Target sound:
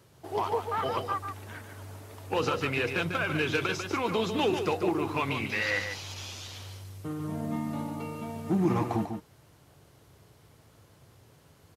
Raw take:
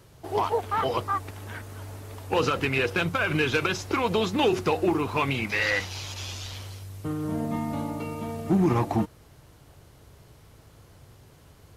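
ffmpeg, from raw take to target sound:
-af "highpass=89,aecho=1:1:145:0.447,volume=0.596"

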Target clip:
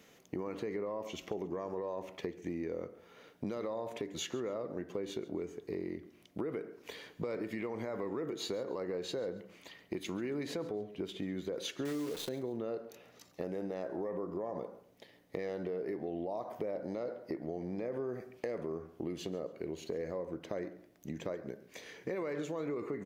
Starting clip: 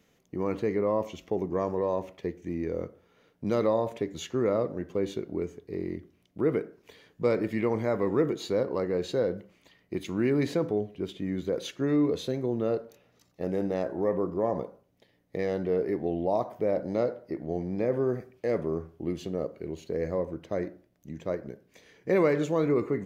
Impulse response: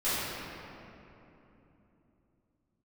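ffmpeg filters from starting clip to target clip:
-filter_complex "[0:a]asettb=1/sr,asplit=3[s0][s1][s2];[s0]atrim=end=11.854[s3];[s1]atrim=start=11.85:end=12.29,asetpts=PTS-STARTPTS,afade=t=in:d=0.004:c=qsin,afade=t=out:st=0.436:d=0.004:c=qsin,acrusher=bits=7:dc=4:mix=0:aa=0.000001[s4];[s2]atrim=start=12.286[s5];[s3][s4]acrossfade=d=0.004:c1=hsin:c2=qsin[s6];[s6][s5]acrossfade=d=0.004:c1=qsin:c2=hsin,lowshelf=f=150:g=-12,alimiter=level_in=1.06:limit=0.0631:level=0:latency=1:release=64,volume=0.944,acompressor=threshold=0.00631:ratio=4,aecho=1:1:138|276:0.1|0.03,volume=2.24"

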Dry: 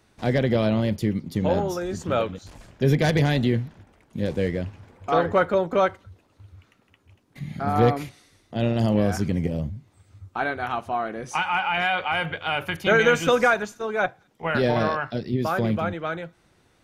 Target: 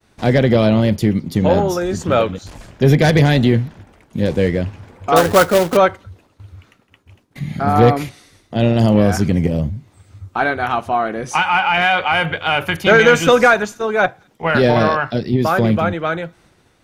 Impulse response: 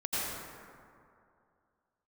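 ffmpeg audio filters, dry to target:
-filter_complex "[0:a]acontrast=75,asettb=1/sr,asplit=3[s0][s1][s2];[s0]atrim=end=5.164[s3];[s1]atrim=start=5.16:end=5.77,asetpts=PTS-STARTPTS,afade=t=in:d=0.004:c=qsin,afade=t=out:st=0.606:d=0.004:c=qsin,acrusher=bits=2:mode=log:mix=0:aa=0.000001[s4];[s2]atrim=start=5.766[s5];[s3][s4]acrossfade=d=0.004:c1=hsin:c2=qsin[s6];[s6][s5]acrossfade=d=0.004:c1=qsin:c2=hsin,agate=range=0.0224:threshold=0.00316:ratio=3:detection=peak,volume=1.26"

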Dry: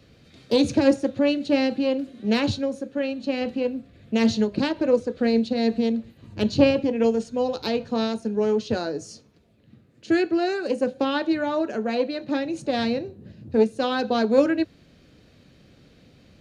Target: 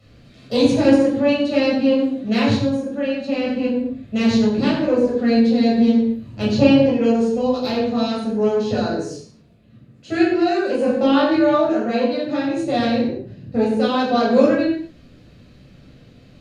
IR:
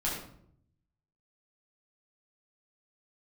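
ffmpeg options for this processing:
-filter_complex "[0:a]asettb=1/sr,asplit=3[s0][s1][s2];[s0]atrim=end=10.754[s3];[s1]atrim=start=10.75:end=11.65,asetpts=PTS-STARTPTS,afade=t=in:d=0.004:c=qsin,afade=t=out:st=0.896:d=0.004:c=qsin,asplit=2[s4][s5];[s5]adelay=22,volume=0.75[s6];[s4][s6]amix=inputs=2:normalize=0,atrim=end_sample=39690[s7];[s2]atrim=start=11.646[s8];[s3][s7]acrossfade=d=0.004:c1=hsin:c2=qsin[s9];[s9][s8]acrossfade=d=0.004:c1=qsin:c2=hsin[s10];[1:a]atrim=start_sample=2205,afade=t=out:st=0.27:d=0.01,atrim=end_sample=12348,asetrate=35721,aresample=44100[s11];[s10][s11]afir=irnorm=-1:irlink=0,volume=0.668"

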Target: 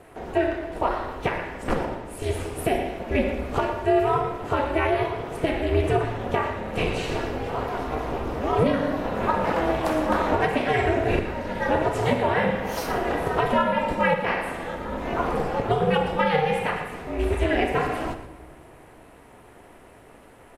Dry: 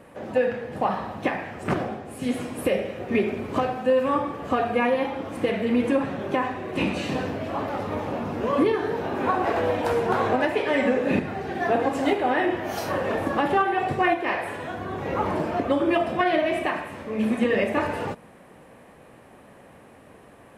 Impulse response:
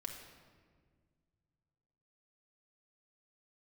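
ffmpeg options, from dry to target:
-filter_complex "[0:a]aeval=exprs='val(0)*sin(2*PI*160*n/s)':c=same,asplit=2[s0][s1];[s1]adelay=116.6,volume=0.251,highshelf=f=4000:g=-2.62[s2];[s0][s2]amix=inputs=2:normalize=0,asplit=2[s3][s4];[1:a]atrim=start_sample=2205,highshelf=f=5000:g=9[s5];[s4][s5]afir=irnorm=-1:irlink=0,volume=0.631[s6];[s3][s6]amix=inputs=2:normalize=0"

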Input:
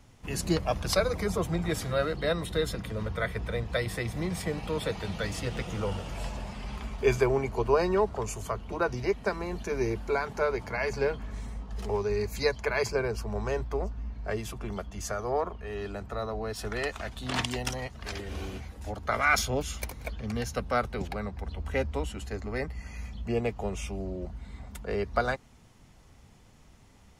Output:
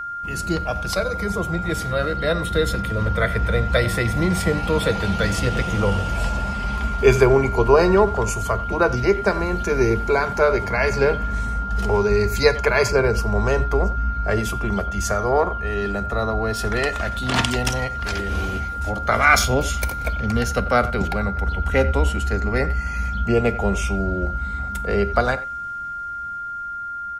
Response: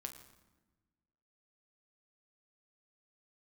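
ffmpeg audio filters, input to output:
-filter_complex "[0:a]asplit=2[s0][s1];[s1]adelay=90,highpass=300,lowpass=3400,asoftclip=type=hard:threshold=0.112,volume=0.158[s2];[s0][s2]amix=inputs=2:normalize=0,dynaudnorm=f=540:g=9:m=2.82,asplit=2[s3][s4];[1:a]atrim=start_sample=2205,afade=t=out:st=0.15:d=0.01,atrim=end_sample=7056,lowshelf=f=240:g=6[s5];[s4][s5]afir=irnorm=-1:irlink=0,volume=1.06[s6];[s3][s6]amix=inputs=2:normalize=0,aeval=exprs='val(0)+0.0631*sin(2*PI*1400*n/s)':c=same,volume=0.708"

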